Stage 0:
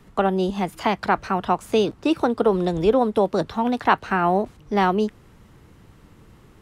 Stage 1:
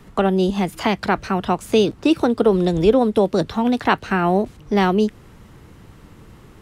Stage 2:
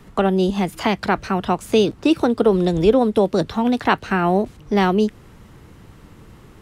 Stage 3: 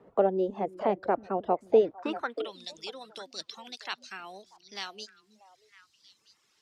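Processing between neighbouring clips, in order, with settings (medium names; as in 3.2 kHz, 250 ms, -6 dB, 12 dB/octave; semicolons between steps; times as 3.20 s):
dynamic bell 980 Hz, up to -7 dB, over -33 dBFS, Q 0.82; trim +5.5 dB
no audible change
band-pass sweep 540 Hz -> 5 kHz, 1.78–2.68 s; repeats whose band climbs or falls 318 ms, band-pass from 250 Hz, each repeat 1.4 oct, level -8 dB; reverb removal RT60 0.97 s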